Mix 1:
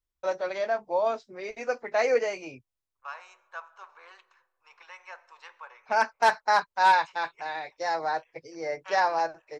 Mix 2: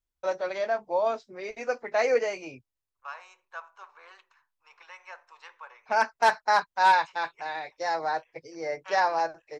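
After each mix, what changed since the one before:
reverb: off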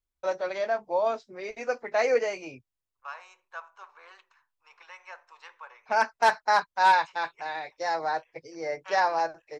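nothing changed

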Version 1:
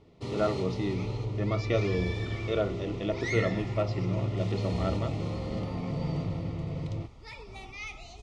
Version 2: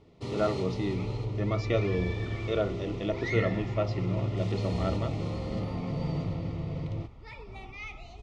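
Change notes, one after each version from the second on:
second sound: add bass and treble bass +2 dB, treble −12 dB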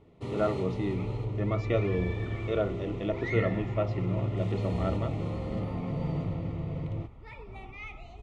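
master: add parametric band 5,100 Hz −11.5 dB 0.91 octaves

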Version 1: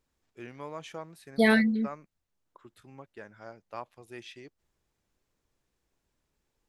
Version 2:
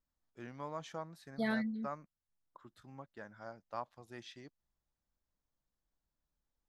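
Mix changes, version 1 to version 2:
second voice −10.5 dB
master: add graphic EQ with 15 bands 100 Hz −3 dB, 400 Hz −8 dB, 2,500 Hz −10 dB, 10,000 Hz −12 dB

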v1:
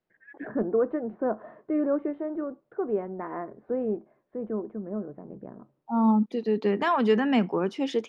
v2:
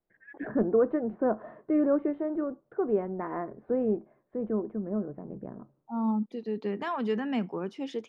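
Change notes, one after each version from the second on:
second voice −8.5 dB
master: add low-shelf EQ 150 Hz +6.5 dB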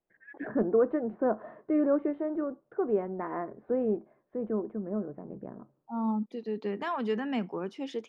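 master: add low-shelf EQ 150 Hz −6.5 dB

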